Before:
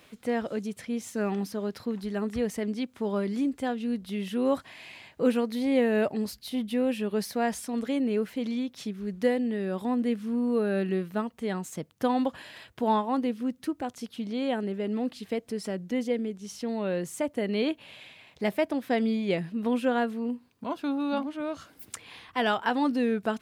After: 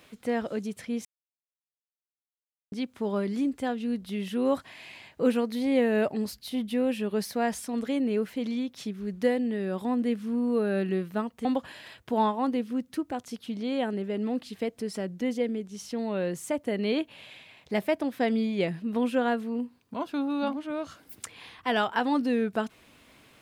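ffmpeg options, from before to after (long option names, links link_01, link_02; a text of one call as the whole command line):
ffmpeg -i in.wav -filter_complex "[0:a]asplit=4[link_01][link_02][link_03][link_04];[link_01]atrim=end=1.05,asetpts=PTS-STARTPTS,afade=type=out:start_time=1.046:duration=0.004:curve=hsin[link_05];[link_02]atrim=start=1.05:end=2.72,asetpts=PTS-STARTPTS,volume=0[link_06];[link_03]atrim=start=2.72:end=11.452,asetpts=PTS-STARTPTS,afade=type=in:duration=0.004:curve=hsin[link_07];[link_04]atrim=start=12.148[link_08];[link_05][link_06][link_07]concat=n=3:v=0:a=1[link_09];[link_09][link_08]acrossfade=duration=0.004:curve1=hsin:curve2=hsin" out.wav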